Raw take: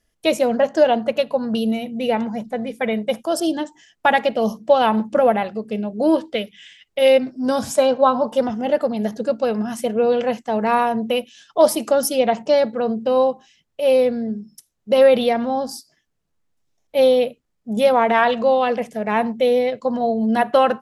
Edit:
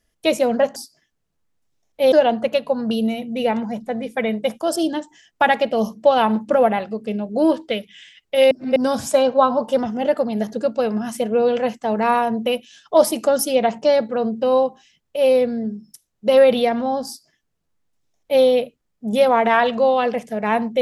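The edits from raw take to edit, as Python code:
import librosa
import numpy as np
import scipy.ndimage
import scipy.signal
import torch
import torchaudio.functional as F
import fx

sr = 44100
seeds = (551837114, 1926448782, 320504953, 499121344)

y = fx.edit(x, sr, fx.reverse_span(start_s=7.15, length_s=0.25),
    fx.duplicate(start_s=15.71, length_s=1.36, to_s=0.76), tone=tone)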